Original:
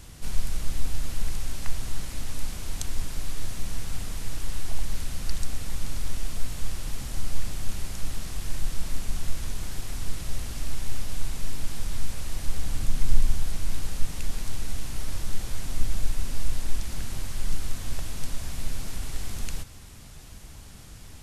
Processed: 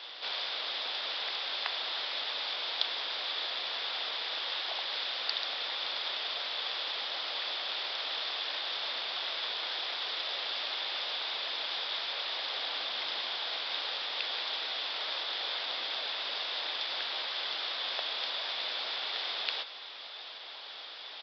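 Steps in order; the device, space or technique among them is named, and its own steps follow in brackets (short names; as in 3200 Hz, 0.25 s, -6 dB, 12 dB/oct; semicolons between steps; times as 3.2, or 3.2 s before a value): musical greeting card (downsampling 11025 Hz; HPF 530 Hz 24 dB/oct; bell 3500 Hz +11.5 dB 0.34 oct); gain +7 dB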